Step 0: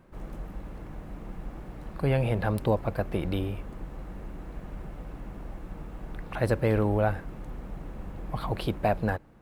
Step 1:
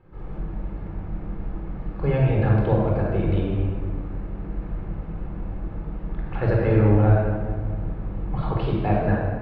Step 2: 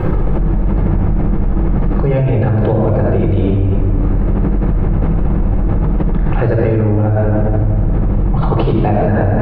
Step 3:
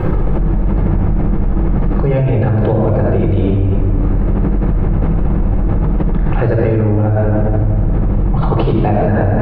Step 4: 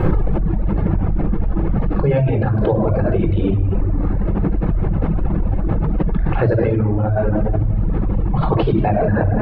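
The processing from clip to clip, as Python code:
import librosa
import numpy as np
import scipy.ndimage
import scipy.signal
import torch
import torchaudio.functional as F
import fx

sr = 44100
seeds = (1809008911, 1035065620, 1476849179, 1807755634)

y1 = fx.air_absorb(x, sr, metres=290.0)
y1 = fx.room_shoebox(y1, sr, seeds[0], volume_m3=2200.0, walls='mixed', distance_m=4.1)
y1 = y1 * 10.0 ** (-2.0 / 20.0)
y2 = fx.tilt_shelf(y1, sr, db=3.0, hz=1100.0)
y2 = fx.env_flatten(y2, sr, amount_pct=100)
y2 = y2 * 10.0 ** (-2.5 / 20.0)
y3 = y2
y4 = fx.dereverb_blind(y3, sr, rt60_s=1.7)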